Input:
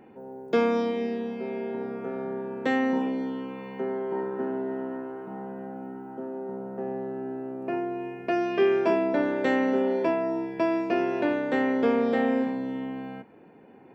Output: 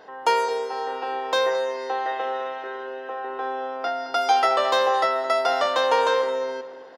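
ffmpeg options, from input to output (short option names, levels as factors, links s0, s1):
-filter_complex "[0:a]asplit=2[s0][s1];[s1]adelay=436,lowpass=f=2000:p=1,volume=0.224,asplit=2[s2][s3];[s3]adelay=436,lowpass=f=2000:p=1,volume=0.39,asplit=2[s4][s5];[s5]adelay=436,lowpass=f=2000:p=1,volume=0.39,asplit=2[s6][s7];[s7]adelay=436,lowpass=f=2000:p=1,volume=0.39[s8];[s2][s4][s6][s8]amix=inputs=4:normalize=0[s9];[s0][s9]amix=inputs=2:normalize=0,asetrate=88200,aresample=44100,volume=1.5"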